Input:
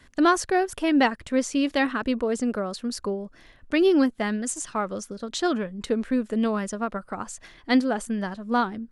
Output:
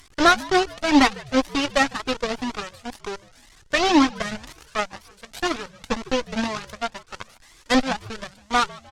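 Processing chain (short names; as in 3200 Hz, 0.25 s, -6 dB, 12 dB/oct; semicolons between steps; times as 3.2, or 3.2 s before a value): delta modulation 32 kbps, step -25.5 dBFS; in parallel at -8.5 dB: crossover distortion -38 dBFS; on the sum: added harmonics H 6 -17 dB, 7 -17 dB, 8 -27 dB, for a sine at -6 dBFS; frequency-shifting echo 0.152 s, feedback 42%, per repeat -77 Hz, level -21 dB; cascading flanger rising 2 Hz; gain +6.5 dB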